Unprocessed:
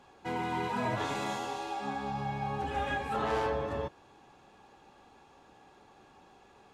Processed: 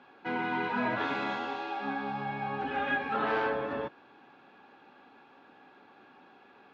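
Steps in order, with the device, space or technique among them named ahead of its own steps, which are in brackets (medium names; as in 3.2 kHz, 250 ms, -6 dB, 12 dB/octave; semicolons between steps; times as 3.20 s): kitchen radio (cabinet simulation 180–4200 Hz, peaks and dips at 260 Hz +7 dB, 1.5 kHz +9 dB, 2.4 kHz +4 dB)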